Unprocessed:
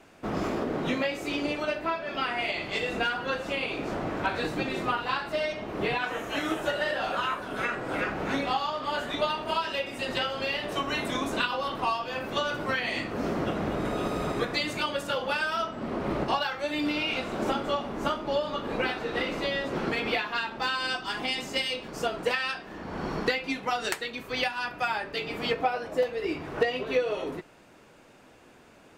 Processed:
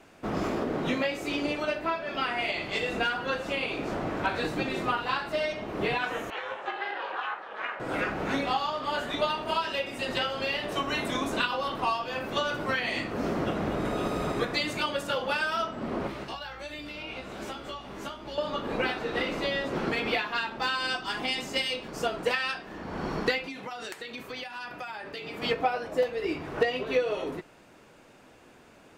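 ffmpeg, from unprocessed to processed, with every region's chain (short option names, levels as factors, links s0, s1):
-filter_complex "[0:a]asettb=1/sr,asplit=3[s0][s1][s2];[s0]atrim=end=6.304[s3];[s1]atrim=start=6.3:end=7.8,asetpts=PTS-STARTPTS,afade=t=in:d=0.004:c=qsin,afade=t=out:st=1.496:d=0.004:c=qsin,aeval=exprs='val(0)*sin(2*PI*210*n/s)':c=same,highpass=550,lowpass=2800[s4];[s2]atrim=start=7.796[s5];[s3][s4]acrossfade=d=0.004:c1=hsin:c2=qsin[s6];[s6][s5]acrossfade=d=0.004:c1=qsin:c2=hsin,asettb=1/sr,asplit=3[s7][s8][s9];[s7]atrim=end=16.074[s10];[s8]atrim=start=16.07:end=18.38,asetpts=PTS-STARTPTS,afade=t=in:d=0.004:c=qsin,afade=t=out:st=2.306:d=0.004:c=qsin,aeval=exprs='val(0)+0.00316*(sin(2*PI*60*n/s)+sin(2*PI*2*60*n/s)/2+sin(2*PI*3*60*n/s)/3+sin(2*PI*4*60*n/s)/4+sin(2*PI*5*60*n/s)/5)':c=same,acrossover=split=120|1700[s11][s12][s13];[s11]acompressor=threshold=0.00224:ratio=4[s14];[s12]acompressor=threshold=0.00891:ratio=4[s15];[s13]acompressor=threshold=0.00631:ratio=4[s16];[s14][s15][s16]amix=inputs=3:normalize=0,asplit=2[s17][s18];[s18]adelay=15,volume=0.501[s19];[s17][s19]amix=inputs=2:normalize=0,atrim=end_sample=101871[s20];[s9]atrim=start=18.376[s21];[s10][s20]acrossfade=d=0.004:c1=hsin:c2=qsin[s22];[s22][s21]acrossfade=d=0.004:c1=qsin:c2=hsin,asettb=1/sr,asplit=3[s23][s24][s25];[s23]atrim=end=23.474[s26];[s24]atrim=start=23.47:end=25.42,asetpts=PTS-STARTPTS,afade=t=in:d=0.004:c=qsin,afade=t=out:st=1.946:d=0.004:c=qsin,highpass=f=94:p=1,acompressor=threshold=0.02:ratio=10:attack=3.2:release=140:knee=1:detection=peak[s27];[s25]atrim=start=25.416[s28];[s26][s27]acrossfade=d=0.004:c1=hsin:c2=qsin[s29];[s29][s28]acrossfade=d=0.004:c1=qsin:c2=hsin"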